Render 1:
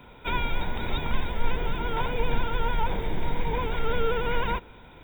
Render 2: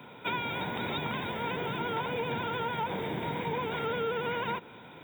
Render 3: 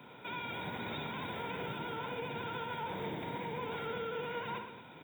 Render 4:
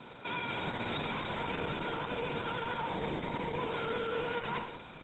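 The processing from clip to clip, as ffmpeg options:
-af "highpass=f=120:w=0.5412,highpass=f=120:w=1.3066,acompressor=threshold=-31dB:ratio=4,volume=1.5dB"
-af "alimiter=level_in=3.5dB:limit=-24dB:level=0:latency=1:release=58,volume=-3.5dB,aecho=1:1:62|113|226:0.473|0.335|0.224,volume=-5dB"
-filter_complex "[0:a]acrossover=split=1500[a][b];[b]aexciter=amount=5.3:drive=3.8:freq=8.8k[c];[a][c]amix=inputs=2:normalize=0,volume=4.5dB" -ar 48000 -c:a libopus -b:a 10k

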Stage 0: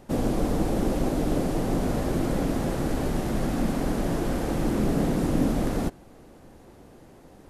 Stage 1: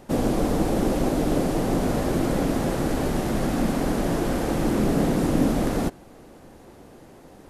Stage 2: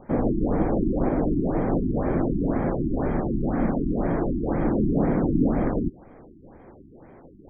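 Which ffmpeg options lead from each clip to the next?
-af "lowshelf=f=150:g=-4.5,volume=4dB"
-filter_complex "[0:a]acrossover=split=2600[a][b];[b]acompressor=threshold=-53dB:ratio=4:attack=1:release=60[c];[a][c]amix=inputs=2:normalize=0,asuperstop=centerf=2800:order=8:qfactor=3.8,afftfilt=real='re*lt(b*sr/1024,370*pow(3300/370,0.5+0.5*sin(2*PI*2*pts/sr)))':imag='im*lt(b*sr/1024,370*pow(3300/370,0.5+0.5*sin(2*PI*2*pts/sr)))':win_size=1024:overlap=0.75"

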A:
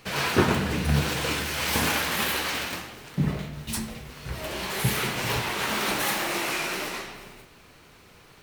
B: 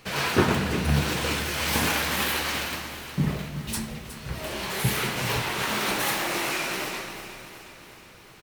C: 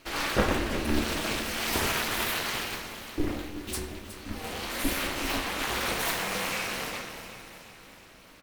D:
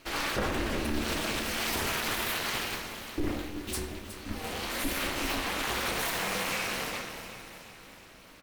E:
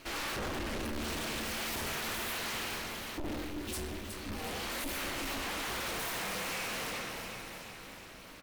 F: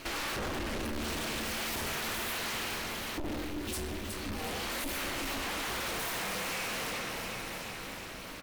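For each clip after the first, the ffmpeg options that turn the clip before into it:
-af "aecho=1:1:366|732|1098|1464|1830|2196|2562:0.224|0.134|0.0806|0.0484|0.029|0.0174|0.0104"
-af "aeval=exprs='val(0)*sin(2*PI*150*n/s)':c=same,bandreject=f=76.47:t=h:w=4,bandreject=f=152.94:t=h:w=4,bandreject=f=229.41:t=h:w=4,bandreject=f=305.88:t=h:w=4,bandreject=f=382.35:t=h:w=4,bandreject=f=458.82:t=h:w=4,bandreject=f=535.29:t=h:w=4,bandreject=f=611.76:t=h:w=4,bandreject=f=688.23:t=h:w=4,bandreject=f=764.7:t=h:w=4,bandreject=f=841.17:t=h:w=4,bandreject=f=917.64:t=h:w=4,bandreject=f=994.11:t=h:w=4,bandreject=f=1.07058k:t=h:w=4,bandreject=f=1.14705k:t=h:w=4,bandreject=f=1.22352k:t=h:w=4,bandreject=f=1.29999k:t=h:w=4,bandreject=f=1.37646k:t=h:w=4,bandreject=f=1.45293k:t=h:w=4,bandreject=f=1.5294k:t=h:w=4,bandreject=f=1.60587k:t=h:w=4,bandreject=f=1.68234k:t=h:w=4,bandreject=f=1.75881k:t=h:w=4,bandreject=f=1.83528k:t=h:w=4,bandreject=f=1.91175k:t=h:w=4,bandreject=f=1.98822k:t=h:w=4,bandreject=f=2.06469k:t=h:w=4,bandreject=f=2.14116k:t=h:w=4,bandreject=f=2.21763k:t=h:w=4,bandreject=f=2.2941k:t=h:w=4,bandreject=f=2.37057k:t=h:w=4,bandreject=f=2.44704k:t=h:w=4,bandreject=f=2.52351k:t=h:w=4,bandreject=f=2.59998k:t=h:w=4,bandreject=f=2.67645k:t=h:w=4,bandreject=f=2.75292k:t=h:w=4,bandreject=f=2.82939k:t=h:w=4,bandreject=f=2.90586k:t=h:w=4,bandreject=f=2.98233k:t=h:w=4"
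-af "alimiter=limit=-19.5dB:level=0:latency=1:release=61"
-af "asoftclip=type=tanh:threshold=-36.5dB,volume=2.5dB"
-af "acompressor=threshold=-42dB:ratio=4,volume=7dB"

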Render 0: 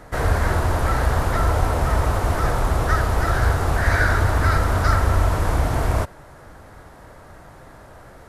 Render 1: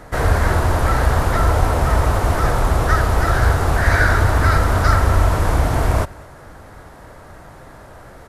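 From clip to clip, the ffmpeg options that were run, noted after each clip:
-af "aecho=1:1:215:0.0668,volume=3.5dB"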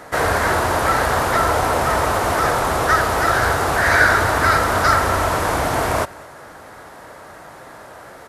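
-af "highpass=f=430:p=1,volume=4.5dB"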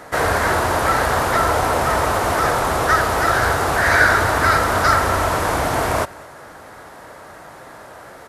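-af anull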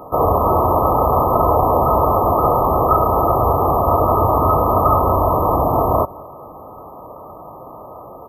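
-af "afftfilt=real='re*(1-between(b*sr/4096,1300,12000))':imag='im*(1-between(b*sr/4096,1300,12000))':win_size=4096:overlap=0.75,volume=4.5dB"

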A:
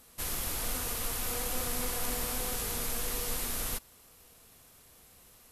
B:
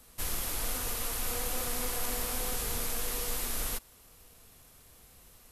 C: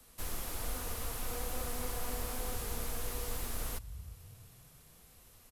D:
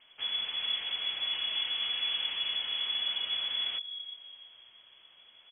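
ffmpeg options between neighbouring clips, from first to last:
-filter_complex "[0:a]lowshelf=f=77:g=8.5,acrossover=split=240|540|4200[a][b][c][d];[a]alimiter=level_in=5.5dB:limit=-24dB:level=0:latency=1:release=281,volume=-5.5dB[e];[e][b][c][d]amix=inputs=4:normalize=0"
-filter_complex "[0:a]acrossover=split=140|1500[a][b][c];[a]asplit=5[d][e][f][g][h];[e]adelay=330,afreqshift=36,volume=-8dB[i];[f]adelay=660,afreqshift=72,volume=-16.9dB[j];[g]adelay=990,afreqshift=108,volume=-25.7dB[k];[h]adelay=1320,afreqshift=144,volume=-34.6dB[l];[d][i][j][k][l]amix=inputs=5:normalize=0[m];[c]asoftclip=type=tanh:threshold=-38dB[n];[m][b][n]amix=inputs=3:normalize=0,volume=-3dB"
-af "lowpass=f=2.9k:t=q:w=0.5098,lowpass=f=2.9k:t=q:w=0.6013,lowpass=f=2.9k:t=q:w=0.9,lowpass=f=2.9k:t=q:w=2.563,afreqshift=-3400,volume=3.5dB"

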